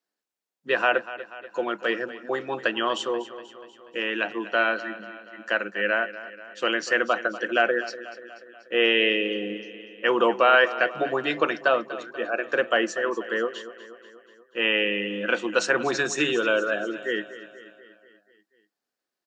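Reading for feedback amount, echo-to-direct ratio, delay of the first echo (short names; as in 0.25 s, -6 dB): 58%, -13.0 dB, 0.242 s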